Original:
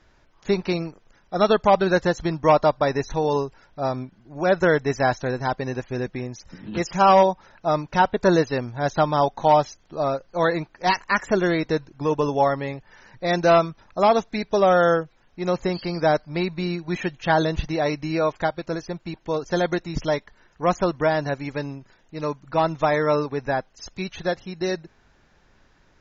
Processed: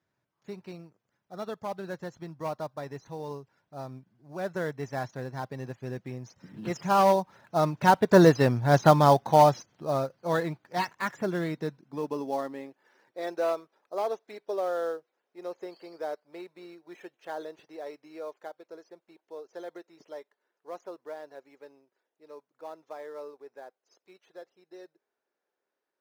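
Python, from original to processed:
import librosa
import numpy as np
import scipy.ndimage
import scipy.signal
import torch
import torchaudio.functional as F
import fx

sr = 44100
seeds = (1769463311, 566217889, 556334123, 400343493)

p1 = fx.doppler_pass(x, sr, speed_mps=5, closest_m=3.3, pass_at_s=8.65)
p2 = fx.sample_hold(p1, sr, seeds[0], rate_hz=5300.0, jitter_pct=20)
p3 = p1 + F.gain(torch.from_numpy(p2), -10.5).numpy()
p4 = fx.low_shelf(p3, sr, hz=95.0, db=-7.5)
y = fx.filter_sweep_highpass(p4, sr, from_hz=120.0, to_hz=420.0, start_s=11.12, end_s=13.33, q=2.2)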